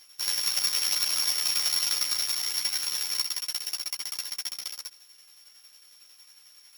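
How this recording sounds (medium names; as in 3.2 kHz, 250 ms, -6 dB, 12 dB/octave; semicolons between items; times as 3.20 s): a buzz of ramps at a fixed pitch in blocks of 8 samples; tremolo saw down 11 Hz, depth 60%; a shimmering, thickened sound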